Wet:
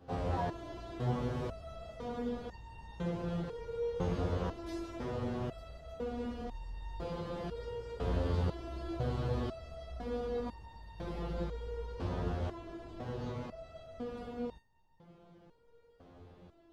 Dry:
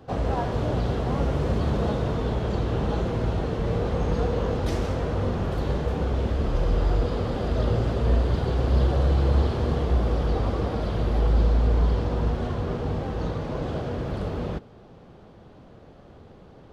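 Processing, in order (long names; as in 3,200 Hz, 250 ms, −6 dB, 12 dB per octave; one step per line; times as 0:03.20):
step-sequenced resonator 2 Hz 88–920 Hz
level +1 dB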